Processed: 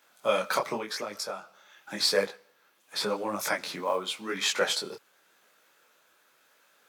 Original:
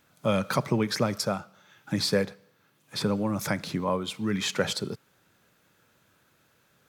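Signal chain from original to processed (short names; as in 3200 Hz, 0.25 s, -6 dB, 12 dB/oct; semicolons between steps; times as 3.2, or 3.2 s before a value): HPF 490 Hz 12 dB/oct; 0.77–2 compressor 5:1, threshold -34 dBFS, peak gain reduction 10 dB; 3.75–4.15 short-mantissa float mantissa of 4-bit; detuned doubles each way 31 cents; gain +6 dB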